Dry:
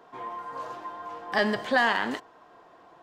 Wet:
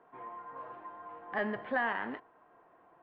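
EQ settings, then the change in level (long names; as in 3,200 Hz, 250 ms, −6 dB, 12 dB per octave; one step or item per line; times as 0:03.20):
low-pass filter 2,400 Hz 24 dB per octave
−8.5 dB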